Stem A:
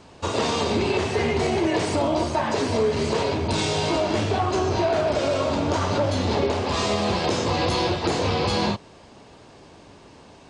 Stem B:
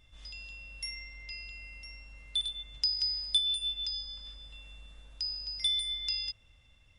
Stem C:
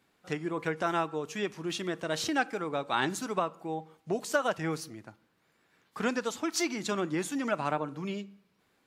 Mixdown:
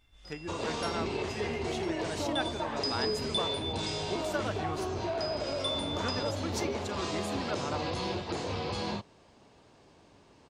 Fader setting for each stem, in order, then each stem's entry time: −11.5, −5.5, −7.0 decibels; 0.25, 0.00, 0.00 seconds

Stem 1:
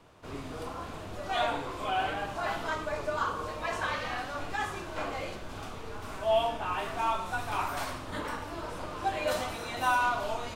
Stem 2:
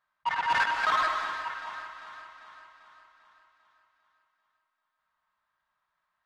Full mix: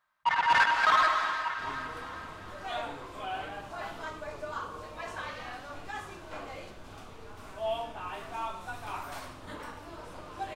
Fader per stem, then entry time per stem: −6.5, +2.5 decibels; 1.35, 0.00 seconds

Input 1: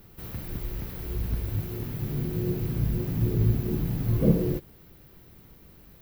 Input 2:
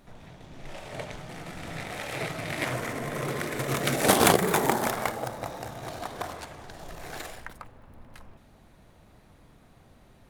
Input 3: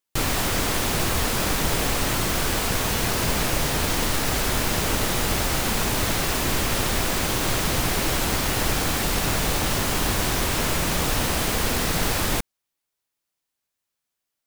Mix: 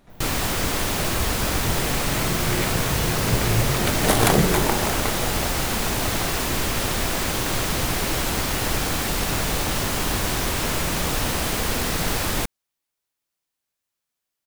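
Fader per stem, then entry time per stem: −0.5, 0.0, −0.5 decibels; 0.10, 0.00, 0.05 seconds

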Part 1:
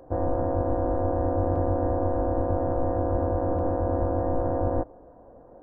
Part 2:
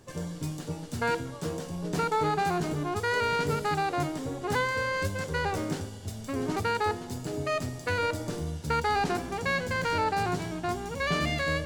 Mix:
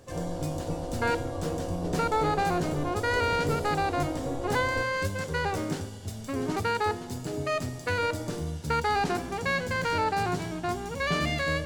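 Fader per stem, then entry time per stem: −10.0, +0.5 decibels; 0.00, 0.00 seconds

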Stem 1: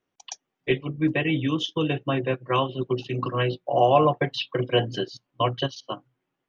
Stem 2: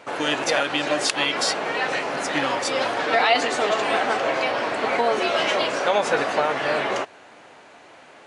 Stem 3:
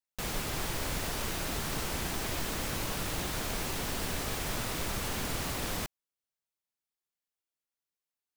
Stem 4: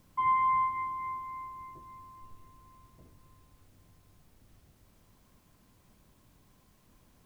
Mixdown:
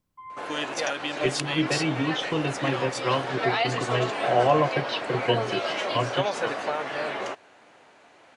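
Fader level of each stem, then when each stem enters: −2.5 dB, −7.0 dB, muted, −15.5 dB; 0.55 s, 0.30 s, muted, 0.00 s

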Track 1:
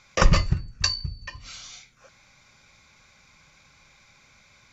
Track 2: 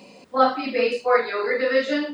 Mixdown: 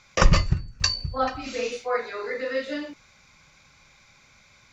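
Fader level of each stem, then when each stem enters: +0.5, −7.5 decibels; 0.00, 0.80 seconds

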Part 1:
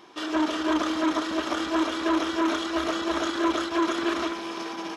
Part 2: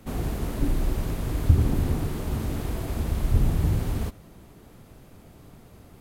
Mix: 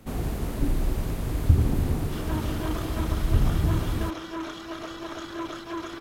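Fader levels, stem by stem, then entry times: −9.5, −0.5 decibels; 1.95, 0.00 seconds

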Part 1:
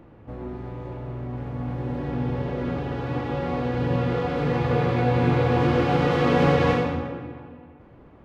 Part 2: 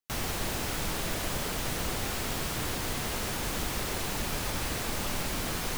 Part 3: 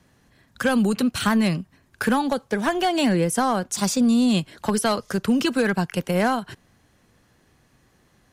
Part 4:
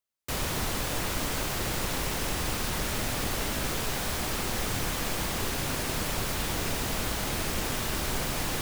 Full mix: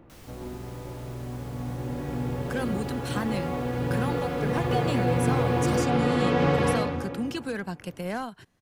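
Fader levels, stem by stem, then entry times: −3.5 dB, −18.0 dB, −11.0 dB, muted; 0.00 s, 0.00 s, 1.90 s, muted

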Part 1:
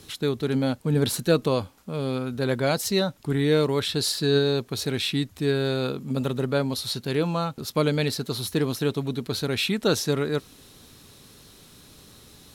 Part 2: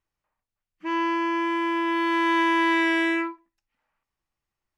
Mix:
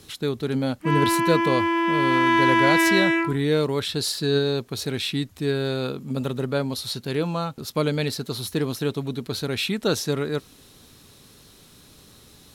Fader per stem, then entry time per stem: −0.5, +3.0 decibels; 0.00, 0.00 seconds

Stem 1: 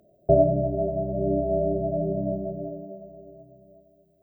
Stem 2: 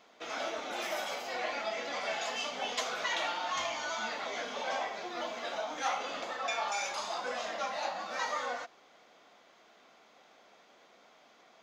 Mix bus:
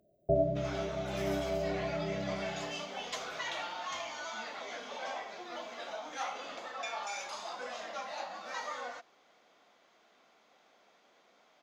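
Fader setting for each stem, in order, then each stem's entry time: −10.0, −5.0 decibels; 0.00, 0.35 seconds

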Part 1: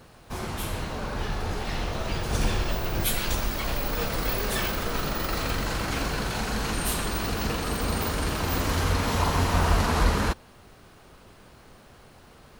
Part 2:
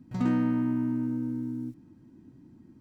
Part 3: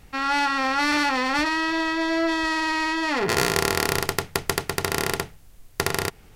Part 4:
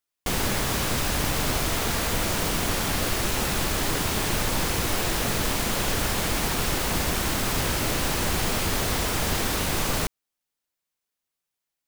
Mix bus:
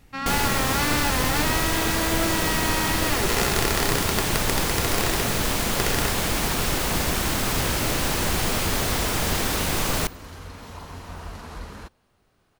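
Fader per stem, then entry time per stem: −15.0, −14.5, −4.5, +1.5 decibels; 1.55, 0.00, 0.00, 0.00 seconds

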